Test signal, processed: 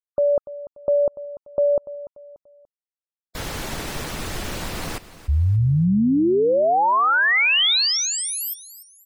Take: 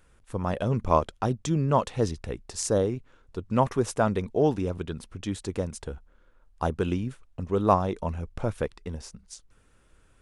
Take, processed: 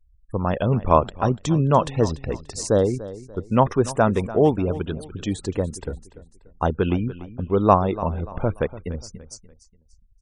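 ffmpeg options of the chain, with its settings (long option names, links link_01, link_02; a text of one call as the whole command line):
ffmpeg -i in.wav -filter_complex "[0:a]acrossover=split=4700[link_01][link_02];[link_02]acompressor=threshold=-34dB:ratio=4:attack=1:release=60[link_03];[link_01][link_03]amix=inputs=2:normalize=0,afftfilt=real='re*gte(hypot(re,im),0.00794)':imag='im*gte(hypot(re,im),0.00794)':win_size=1024:overlap=0.75,aecho=1:1:291|582|873:0.158|0.0571|0.0205,volume=5.5dB" out.wav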